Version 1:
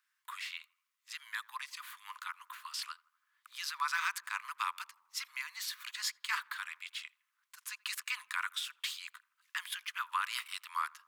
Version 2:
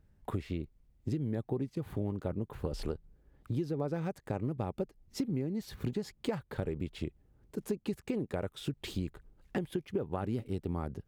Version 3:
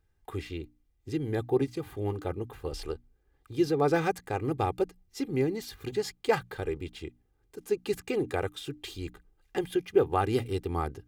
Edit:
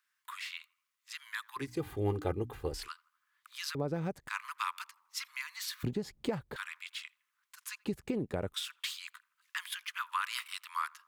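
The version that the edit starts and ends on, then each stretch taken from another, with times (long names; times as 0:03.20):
1
0:01.68–0:02.77: punch in from 3, crossfade 0.24 s
0:03.75–0:04.28: punch in from 2
0:05.83–0:06.56: punch in from 2
0:07.85–0:08.54: punch in from 2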